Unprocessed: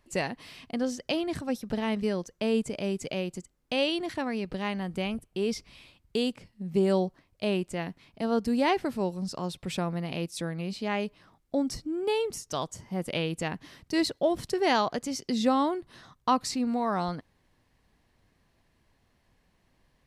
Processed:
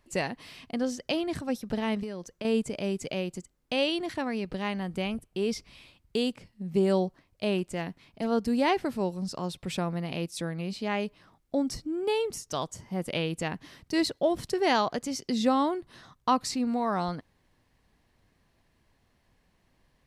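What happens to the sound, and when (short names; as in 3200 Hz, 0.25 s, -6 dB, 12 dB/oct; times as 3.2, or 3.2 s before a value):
2.03–2.45 compressor, threshold -32 dBFS
7.58–8.28 hard clip -21 dBFS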